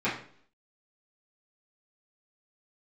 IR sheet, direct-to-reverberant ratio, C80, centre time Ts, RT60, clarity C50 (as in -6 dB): -12.0 dB, 11.0 dB, 32 ms, 0.55 s, 6.5 dB